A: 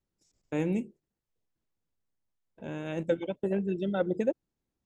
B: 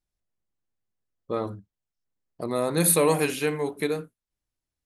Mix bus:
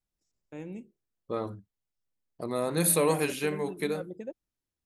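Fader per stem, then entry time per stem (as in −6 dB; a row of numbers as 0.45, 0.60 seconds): −11.5, −4.0 decibels; 0.00, 0.00 seconds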